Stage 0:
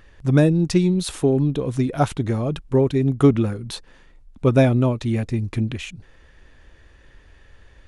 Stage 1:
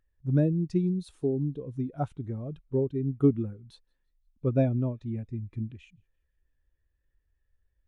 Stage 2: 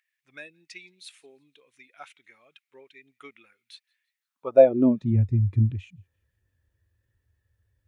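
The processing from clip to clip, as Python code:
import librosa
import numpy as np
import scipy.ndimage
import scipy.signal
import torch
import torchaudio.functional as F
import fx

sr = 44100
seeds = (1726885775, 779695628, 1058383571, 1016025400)

y1 = fx.echo_wet_highpass(x, sr, ms=171, feedback_pct=58, hz=2000.0, wet_db=-20.5)
y1 = fx.spectral_expand(y1, sr, expansion=1.5)
y1 = y1 * librosa.db_to_amplitude(-8.0)
y2 = fx.filter_sweep_highpass(y1, sr, from_hz=2200.0, to_hz=95.0, start_s=4.12, end_s=5.24, q=3.8)
y2 = y2 * librosa.db_to_amplitude(5.5)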